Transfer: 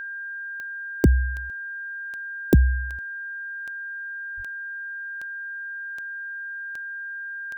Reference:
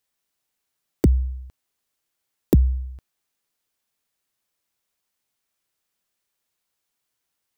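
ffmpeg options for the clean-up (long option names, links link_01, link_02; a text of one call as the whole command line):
ffmpeg -i in.wav -filter_complex "[0:a]adeclick=threshold=4,bandreject=frequency=1600:width=30,asplit=3[link_01][link_02][link_03];[link_01]afade=type=out:start_time=4.36:duration=0.02[link_04];[link_02]highpass=frequency=140:width=0.5412,highpass=frequency=140:width=1.3066,afade=type=in:start_time=4.36:duration=0.02,afade=type=out:start_time=4.48:duration=0.02[link_05];[link_03]afade=type=in:start_time=4.48:duration=0.02[link_06];[link_04][link_05][link_06]amix=inputs=3:normalize=0" out.wav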